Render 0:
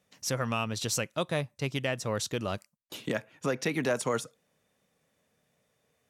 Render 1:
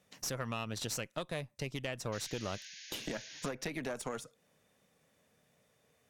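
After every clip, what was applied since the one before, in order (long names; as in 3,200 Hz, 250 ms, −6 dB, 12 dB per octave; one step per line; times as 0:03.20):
downward compressor 4 to 1, threshold −40 dBFS, peak gain reduction 14 dB
tube saturation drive 32 dB, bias 0.75
sound drawn into the spectrogram noise, 0:02.12–0:03.49, 1,500–6,900 Hz −57 dBFS
level +6.5 dB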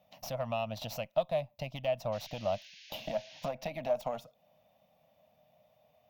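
drawn EQ curve 220 Hz 0 dB, 410 Hz −16 dB, 630 Hz +15 dB, 1,600 Hz −11 dB, 2,700 Hz +1 dB, 5,400 Hz −6 dB, 8,700 Hz −21 dB, 15,000 Hz +6 dB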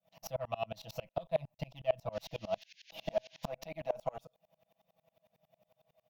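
comb filter 6.1 ms, depth 80%
tremolo with a ramp in dB swelling 11 Hz, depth 30 dB
level +1.5 dB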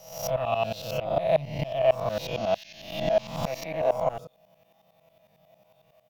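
peak hold with a rise ahead of every peak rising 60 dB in 0.67 s
level +7.5 dB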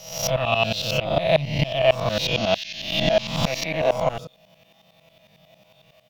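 drawn EQ curve 260 Hz 0 dB, 730 Hz −6 dB, 3,500 Hz +7 dB, 14,000 Hz −5 dB
level +8.5 dB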